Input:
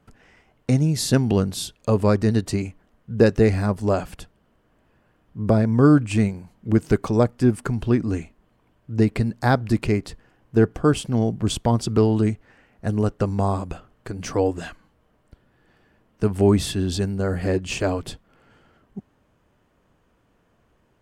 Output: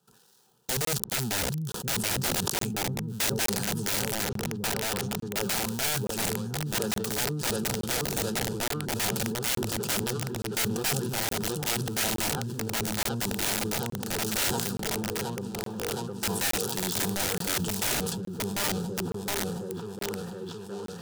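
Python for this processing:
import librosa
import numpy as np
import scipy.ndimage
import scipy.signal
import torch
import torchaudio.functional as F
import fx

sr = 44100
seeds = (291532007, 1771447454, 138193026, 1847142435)

y = fx.dead_time(x, sr, dead_ms=0.21)
y = fx.echo_opening(y, sr, ms=718, hz=200, octaves=1, feedback_pct=70, wet_db=-3)
y = fx.rider(y, sr, range_db=4, speed_s=0.5)
y = scipy.signal.sosfilt(scipy.signal.butter(4, 71.0, 'highpass', fs=sr, output='sos'), y)
y = fx.low_shelf(y, sr, hz=430.0, db=-5.5)
y = fx.fixed_phaser(y, sr, hz=420.0, stages=8)
y = (np.mod(10.0 ** (23.0 / 20.0) * y + 1.0, 2.0) - 1.0) / 10.0 ** (23.0 / 20.0)
y = fx.high_shelf(y, sr, hz=3400.0, db=10.5)
y = fx.notch(y, sr, hz=1100.0, q=5.4)
y = fx.buffer_crackle(y, sr, first_s=0.85, period_s=0.87, block=1024, kind='zero')
y = fx.sustainer(y, sr, db_per_s=26.0)
y = F.gain(torch.from_numpy(y), -4.0).numpy()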